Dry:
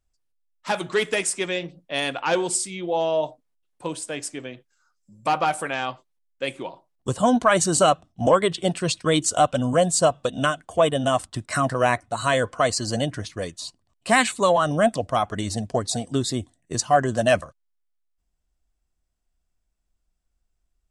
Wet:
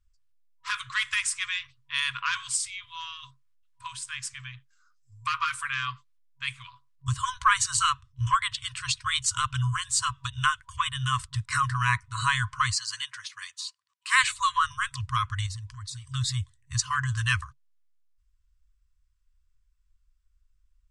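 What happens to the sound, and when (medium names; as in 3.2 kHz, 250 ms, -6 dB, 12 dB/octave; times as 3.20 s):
12.75–14.24 s: high-pass 780 Hz
15.46–16.08 s: compression 5:1, threshold -33 dBFS
whole clip: Bessel low-pass 7.7 kHz, order 2; FFT band-reject 130–970 Hz; bass shelf 100 Hz +8.5 dB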